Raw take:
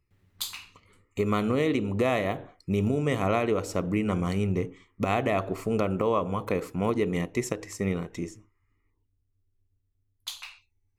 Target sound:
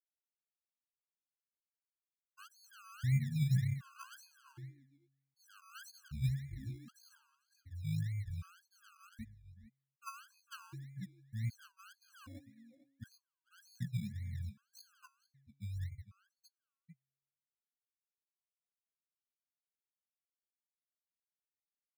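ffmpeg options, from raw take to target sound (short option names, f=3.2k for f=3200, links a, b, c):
-filter_complex "[0:a]afftfilt=real='re*gte(hypot(re,im),0.316)':imag='im*gte(hypot(re,im),0.316)':win_size=1024:overlap=0.75,agate=range=-33dB:threshold=-57dB:ratio=3:detection=peak,aemphasis=mode=reproduction:type=riaa,bandreject=f=273.6:t=h:w=4,bandreject=f=547.2:t=h:w=4,bandreject=f=820.8:t=h:w=4,bandreject=f=1.0944k:t=h:w=4,bandreject=f=1.368k:t=h:w=4,bandreject=f=1.6416k:t=h:w=4,bandreject=f=1.9152k:t=h:w=4,areverse,acompressor=threshold=-30dB:ratio=5,areverse,asplit=3[a][b][c];[a]bandpass=f=270:t=q:w=8,volume=0dB[d];[b]bandpass=f=2.29k:t=q:w=8,volume=-6dB[e];[c]bandpass=f=3.01k:t=q:w=8,volume=-9dB[f];[d][e][f]amix=inputs=3:normalize=0,asetrate=22050,aresample=44100,acrossover=split=470[g][h];[g]acrusher=samples=28:mix=1:aa=0.000001:lfo=1:lforange=16.8:lforate=1.8[i];[i][h]amix=inputs=2:normalize=0,asplit=2[j][k];[k]adelay=449,volume=-14dB,highshelf=f=4k:g=-10.1[l];[j][l]amix=inputs=2:normalize=0,afftfilt=real='re*gt(sin(2*PI*0.65*pts/sr)*(1-2*mod(floor(b*sr/1024/830),2)),0)':imag='im*gt(sin(2*PI*0.65*pts/sr)*(1-2*mod(floor(b*sr/1024/830),2)),0)':win_size=1024:overlap=0.75,volume=6dB"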